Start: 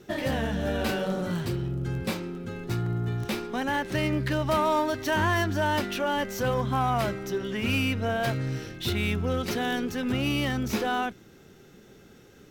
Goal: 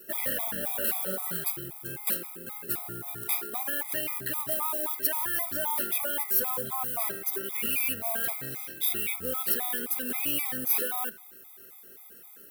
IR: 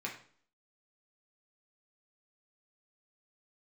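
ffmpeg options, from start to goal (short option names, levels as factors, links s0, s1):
-filter_complex "[0:a]highpass=f=720:p=1,alimiter=level_in=1.19:limit=0.0631:level=0:latency=1:release=21,volume=0.841,acrusher=bits=3:mode=log:mix=0:aa=0.000001,aexciter=amount=6.4:drive=8.9:freq=9000,asplit=2[s0][s1];[1:a]atrim=start_sample=2205,lowshelf=f=210:g=-9.5[s2];[s1][s2]afir=irnorm=-1:irlink=0,volume=0.282[s3];[s0][s3]amix=inputs=2:normalize=0,afftfilt=real='re*gt(sin(2*PI*3.8*pts/sr)*(1-2*mod(floor(b*sr/1024/650),2)),0)':imag='im*gt(sin(2*PI*3.8*pts/sr)*(1-2*mod(floor(b*sr/1024/650),2)),0)':win_size=1024:overlap=0.75"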